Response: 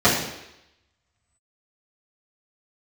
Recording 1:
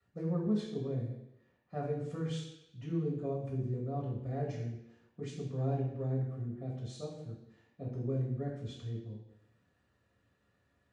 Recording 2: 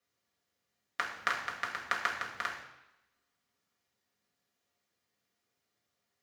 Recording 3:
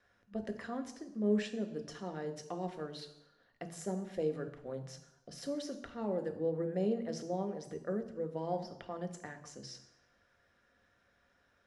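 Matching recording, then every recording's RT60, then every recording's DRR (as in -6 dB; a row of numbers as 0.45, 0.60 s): 1; 0.85, 0.85, 0.85 s; -12.0, -3.5, 6.5 dB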